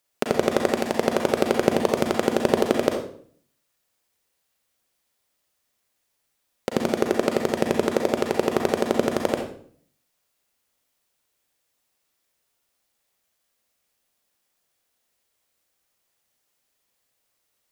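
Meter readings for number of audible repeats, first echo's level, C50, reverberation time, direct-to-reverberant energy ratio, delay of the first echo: no echo audible, no echo audible, 4.0 dB, 0.55 s, 2.0 dB, no echo audible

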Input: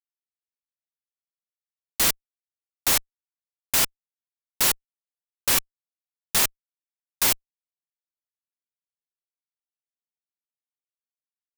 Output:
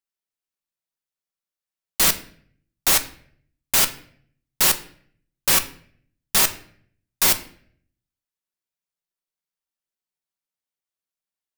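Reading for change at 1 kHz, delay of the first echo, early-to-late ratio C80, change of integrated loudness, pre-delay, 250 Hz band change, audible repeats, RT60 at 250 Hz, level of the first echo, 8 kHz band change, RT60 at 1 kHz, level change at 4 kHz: +4.0 dB, no echo audible, 18.0 dB, +3.5 dB, 5 ms, +4.0 dB, no echo audible, 0.75 s, no echo audible, +3.5 dB, 0.50 s, +3.5 dB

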